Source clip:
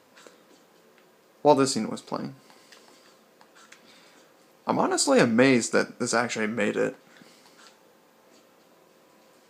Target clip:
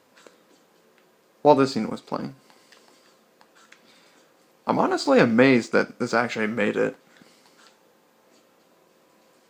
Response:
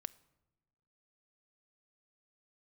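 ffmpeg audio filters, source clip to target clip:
-filter_complex "[0:a]acrossover=split=4800[link_01][link_02];[link_02]acompressor=threshold=-54dB:ratio=4:attack=1:release=60[link_03];[link_01][link_03]amix=inputs=2:normalize=0,asplit=2[link_04][link_05];[link_05]aeval=exprs='sgn(val(0))*max(abs(val(0))-0.00596,0)':channel_layout=same,volume=-4dB[link_06];[link_04][link_06]amix=inputs=2:normalize=0,volume=-1.5dB"

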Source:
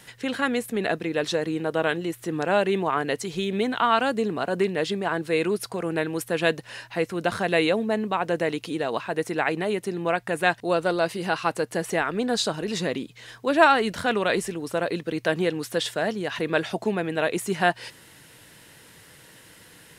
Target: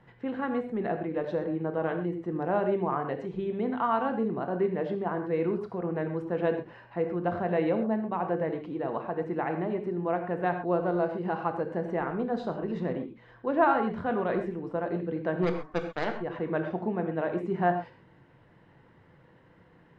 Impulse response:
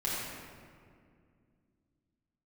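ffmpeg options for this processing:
-filter_complex "[0:a]lowpass=1100,asplit=3[link_01][link_02][link_03];[link_01]afade=type=out:start_time=15.42:duration=0.02[link_04];[link_02]aeval=exprs='0.224*(cos(1*acos(clip(val(0)/0.224,-1,1)))-cos(1*PI/2))+0.0447*(cos(2*acos(clip(val(0)/0.224,-1,1)))-cos(2*PI/2))+0.0141*(cos(3*acos(clip(val(0)/0.224,-1,1)))-cos(3*PI/2))+0.0316*(cos(7*acos(clip(val(0)/0.224,-1,1)))-cos(7*PI/2))+0.0224*(cos(8*acos(clip(val(0)/0.224,-1,1)))-cos(8*PI/2))':channel_layout=same,afade=type=in:start_time=15.42:duration=0.02,afade=type=out:start_time=16.2:duration=0.02[link_05];[link_03]afade=type=in:start_time=16.2:duration=0.02[link_06];[link_04][link_05][link_06]amix=inputs=3:normalize=0,asplit=2[link_07][link_08];[1:a]atrim=start_sample=2205,atrim=end_sample=6174[link_09];[link_08][link_09]afir=irnorm=-1:irlink=0,volume=-7dB[link_10];[link_07][link_10]amix=inputs=2:normalize=0,volume=-6.5dB"

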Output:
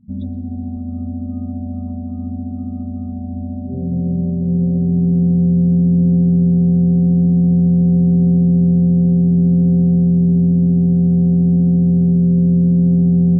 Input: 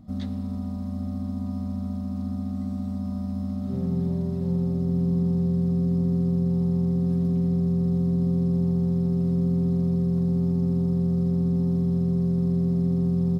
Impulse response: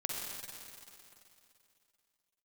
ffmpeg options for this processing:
-filter_complex "[0:a]asplit=2[link_01][link_02];[1:a]atrim=start_sample=2205,adelay=126[link_03];[link_02][link_03]afir=irnorm=-1:irlink=0,volume=-6dB[link_04];[link_01][link_04]amix=inputs=2:normalize=0,afftdn=noise_reduction=32:noise_floor=-34,volume=5dB"

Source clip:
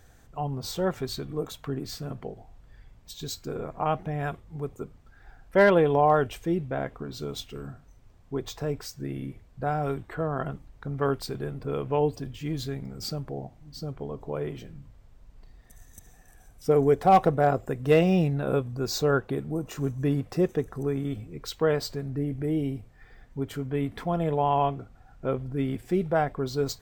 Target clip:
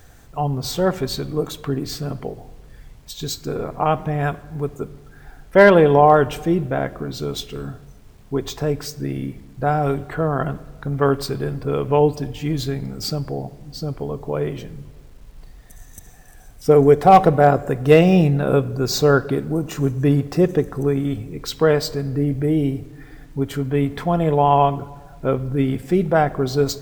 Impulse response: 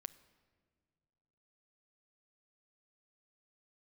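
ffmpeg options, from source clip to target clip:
-filter_complex "[0:a]acrusher=bits=10:mix=0:aa=0.000001,asplit=2[link_01][link_02];[1:a]atrim=start_sample=2205[link_03];[link_02][link_03]afir=irnorm=-1:irlink=0,volume=17dB[link_04];[link_01][link_04]amix=inputs=2:normalize=0,volume=-6dB"

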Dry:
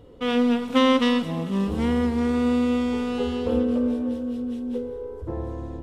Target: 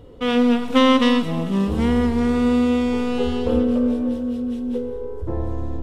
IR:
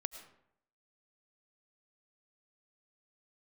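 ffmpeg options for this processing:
-filter_complex "[0:a]asplit=2[link_01][link_02];[1:a]atrim=start_sample=2205,lowshelf=frequency=74:gain=10.5[link_03];[link_02][link_03]afir=irnorm=-1:irlink=0,volume=0.5dB[link_04];[link_01][link_04]amix=inputs=2:normalize=0,volume=-2dB"

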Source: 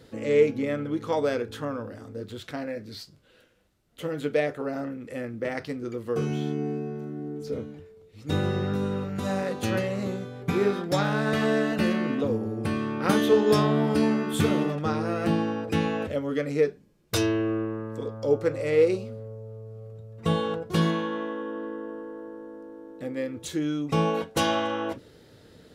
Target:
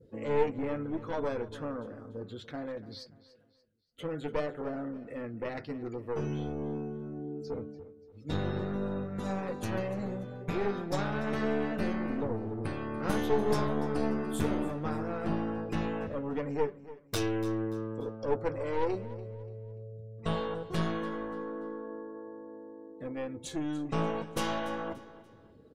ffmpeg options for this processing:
ffmpeg -i in.wav -af "aeval=exprs='clip(val(0),-1,0.0316)':channel_layout=same,adynamicequalizer=threshold=0.00316:dfrequency=3200:dqfactor=0.97:tfrequency=3200:tqfactor=0.97:attack=5:release=100:ratio=0.375:range=3:mode=cutabove:tftype=bell,flanger=delay=1.9:depth=4.5:regen=-82:speed=0.15:shape=sinusoidal,afftdn=noise_reduction=19:noise_floor=-55,aecho=1:1:290|580|870:0.141|0.0509|0.0183" out.wav

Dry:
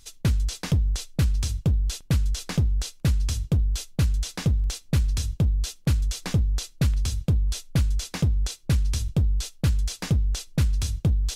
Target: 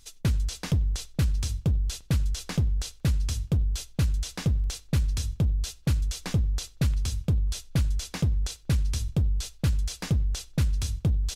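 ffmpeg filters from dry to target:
ffmpeg -i in.wav -filter_complex "[0:a]asplit=2[link_01][link_02];[link_02]adelay=94,lowpass=frequency=3200:poles=1,volume=-23.5dB,asplit=2[link_03][link_04];[link_04]adelay=94,lowpass=frequency=3200:poles=1,volume=0.42,asplit=2[link_05][link_06];[link_06]adelay=94,lowpass=frequency=3200:poles=1,volume=0.42[link_07];[link_01][link_03][link_05][link_07]amix=inputs=4:normalize=0,volume=-2.5dB" out.wav

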